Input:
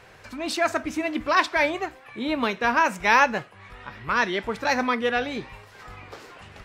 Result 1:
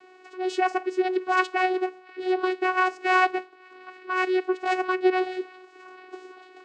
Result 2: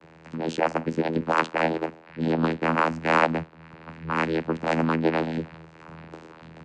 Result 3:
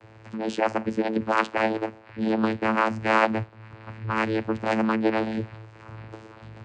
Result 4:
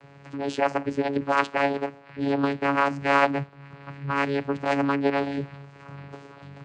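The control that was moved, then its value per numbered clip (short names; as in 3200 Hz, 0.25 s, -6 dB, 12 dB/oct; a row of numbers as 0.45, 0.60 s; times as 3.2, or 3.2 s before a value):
vocoder, frequency: 370, 81, 110, 140 Hz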